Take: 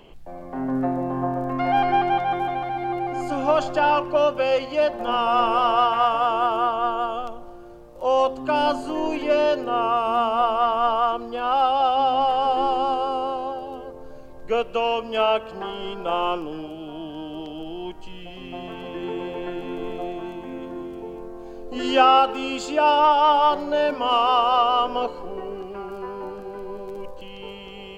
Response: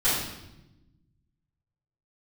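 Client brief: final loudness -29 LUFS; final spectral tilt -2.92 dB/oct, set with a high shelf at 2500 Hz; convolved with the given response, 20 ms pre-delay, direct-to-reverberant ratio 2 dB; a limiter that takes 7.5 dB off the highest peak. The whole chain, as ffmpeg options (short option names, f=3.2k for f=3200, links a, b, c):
-filter_complex "[0:a]highshelf=f=2.5k:g=-3.5,alimiter=limit=-11.5dB:level=0:latency=1,asplit=2[a][b];[1:a]atrim=start_sample=2205,adelay=20[c];[b][c]afir=irnorm=-1:irlink=0,volume=-16dB[d];[a][d]amix=inputs=2:normalize=0,volume=-7.5dB"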